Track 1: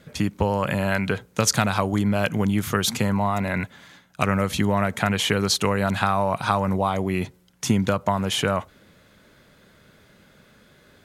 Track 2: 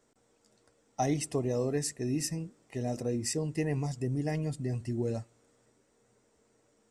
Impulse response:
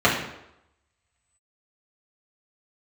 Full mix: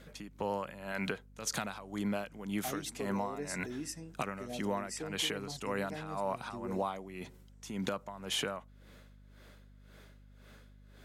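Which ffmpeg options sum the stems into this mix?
-filter_complex "[0:a]alimiter=limit=-12.5dB:level=0:latency=1:release=137,aeval=exprs='val(0)*pow(10,-18*(0.5-0.5*cos(2*PI*1.9*n/s))/20)':channel_layout=same,volume=-2.5dB[link_01];[1:a]adelay=1650,volume=-7.5dB[link_02];[link_01][link_02]amix=inputs=2:normalize=0,highpass=210,aeval=exprs='val(0)+0.00158*(sin(2*PI*50*n/s)+sin(2*PI*2*50*n/s)/2+sin(2*PI*3*50*n/s)/3+sin(2*PI*4*50*n/s)/4+sin(2*PI*5*50*n/s)/5)':channel_layout=same,acompressor=threshold=-32dB:ratio=3"

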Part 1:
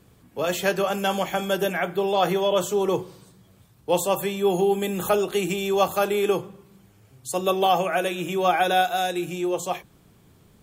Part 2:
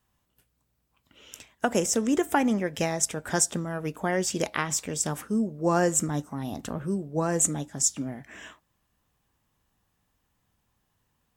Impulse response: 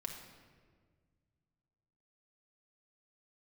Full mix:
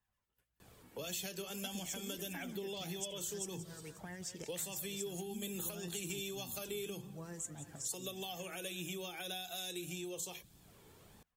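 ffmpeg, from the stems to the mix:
-filter_complex "[0:a]bass=frequency=250:gain=-7,treble=frequency=4000:gain=1,acompressor=threshold=-23dB:ratio=6,adelay=600,volume=2.5dB[link_01];[1:a]equalizer=frequency=1800:width=1.1:gain=5,acrossover=split=1800[link_02][link_03];[link_02]aeval=exprs='val(0)*(1-0.5/2+0.5/2*cos(2*PI*9.7*n/s))':channel_layout=same[link_04];[link_03]aeval=exprs='val(0)*(1-0.5/2-0.5/2*cos(2*PI*9.7*n/s))':channel_layout=same[link_05];[link_04][link_05]amix=inputs=2:normalize=0,volume=-8dB,asplit=2[link_06][link_07];[link_07]volume=-14dB,aecho=0:1:178|356|534|712|890|1068|1246|1424:1|0.53|0.281|0.149|0.0789|0.0418|0.0222|0.0117[link_08];[link_01][link_06][link_08]amix=inputs=3:normalize=0,acrossover=split=280|3000[link_09][link_10][link_11];[link_10]acompressor=threshold=-48dB:ratio=4[link_12];[link_09][link_12][link_11]amix=inputs=3:normalize=0,flanger=delay=1.1:depth=1.2:regen=43:speed=1.7:shape=sinusoidal,acompressor=threshold=-42dB:ratio=2"

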